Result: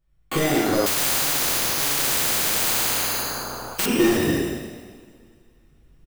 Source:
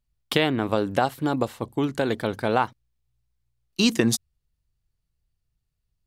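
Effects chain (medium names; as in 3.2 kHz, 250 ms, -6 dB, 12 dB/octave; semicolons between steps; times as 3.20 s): spectral sustain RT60 0.98 s; recorder AGC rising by 6.5 dB/s; hard clipper -17.5 dBFS, distortion -8 dB; careless resampling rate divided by 8×, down filtered, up hold; peak limiter -23 dBFS, peak gain reduction 7.5 dB; treble shelf 10 kHz +4 dB; frequency-shifting echo 151 ms, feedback 35%, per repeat +110 Hz, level -15.5 dB; two-slope reverb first 0.85 s, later 2.8 s, from -20 dB, DRR -5.5 dB; 0.86–3.86 s: spectrum-flattening compressor 10:1; trim +3 dB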